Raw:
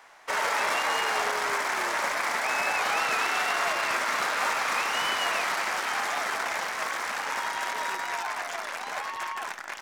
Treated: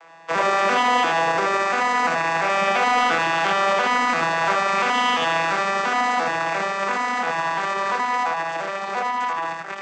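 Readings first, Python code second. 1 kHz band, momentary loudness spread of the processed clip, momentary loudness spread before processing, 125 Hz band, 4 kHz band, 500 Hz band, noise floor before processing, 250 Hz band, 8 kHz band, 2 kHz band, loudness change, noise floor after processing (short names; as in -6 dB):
+8.5 dB, 6 LU, 8 LU, n/a, +3.5 dB, +10.0 dB, -38 dBFS, +14.0 dB, -1.5 dB, +5.0 dB, +6.5 dB, -31 dBFS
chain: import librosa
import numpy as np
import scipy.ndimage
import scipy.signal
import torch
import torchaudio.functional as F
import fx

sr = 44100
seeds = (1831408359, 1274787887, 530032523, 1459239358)

p1 = fx.vocoder_arp(x, sr, chord='minor triad', root=52, every_ms=344)
p2 = np.clip(10.0 ** (24.0 / 20.0) * p1, -1.0, 1.0) / 10.0 ** (24.0 / 20.0)
p3 = p1 + (p2 * 10.0 ** (-6.5 / 20.0))
p4 = p3 + 10.0 ** (-3.5 / 20.0) * np.pad(p3, (int(80 * sr / 1000.0), 0))[:len(p3)]
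y = p4 * 10.0 ** (3.5 / 20.0)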